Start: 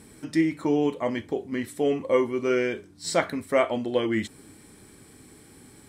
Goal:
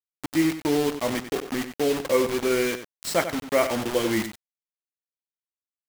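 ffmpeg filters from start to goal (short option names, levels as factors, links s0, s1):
-filter_complex "[0:a]acrusher=bits=4:mix=0:aa=0.000001,asplit=2[s0][s1];[s1]adelay=93.29,volume=0.316,highshelf=f=4000:g=-2.1[s2];[s0][s2]amix=inputs=2:normalize=0"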